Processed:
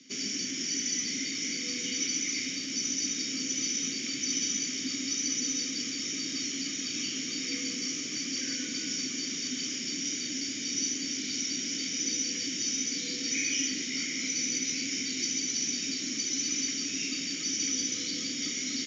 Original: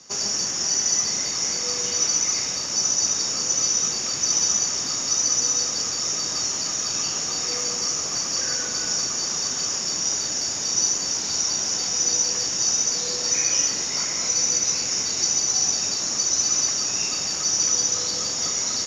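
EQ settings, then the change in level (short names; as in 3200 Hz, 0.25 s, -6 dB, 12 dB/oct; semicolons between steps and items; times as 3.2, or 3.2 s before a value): vowel filter i; low shelf 460 Hz +7 dB; high shelf 2100 Hz +10 dB; +5.0 dB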